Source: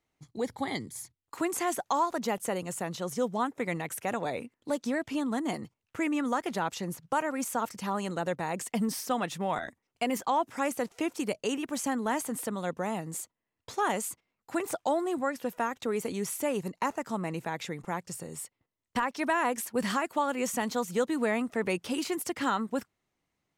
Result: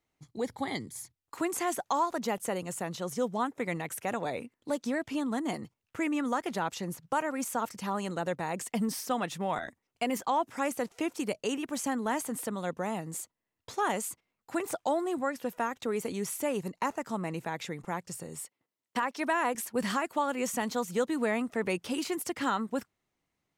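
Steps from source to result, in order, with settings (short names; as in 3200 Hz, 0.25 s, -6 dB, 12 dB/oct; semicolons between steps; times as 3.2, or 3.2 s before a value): 18.43–19.55 HPF 200 Hz 12 dB/oct; gain -1 dB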